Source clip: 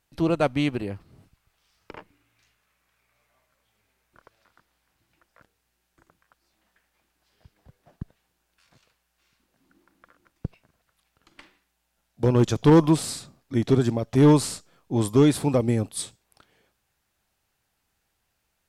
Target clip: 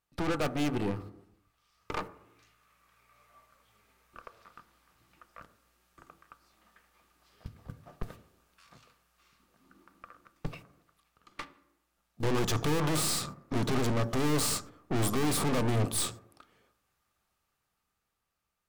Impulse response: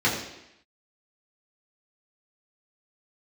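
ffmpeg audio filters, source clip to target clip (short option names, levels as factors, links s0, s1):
-filter_complex "[0:a]agate=range=0.251:threshold=0.00398:ratio=16:detection=peak,equalizer=f=1200:w=6.4:g=12.5,dynaudnorm=f=310:g=11:m=5.31,aeval=exprs='(tanh(44.7*val(0)+0.7)-tanh(0.7))/44.7':c=same,asplit=2[s0][s1];[1:a]atrim=start_sample=2205,lowpass=f=1700:w=0.5412,lowpass=f=1700:w=1.3066[s2];[s1][s2]afir=irnorm=-1:irlink=0,volume=0.0631[s3];[s0][s3]amix=inputs=2:normalize=0,volume=1.68"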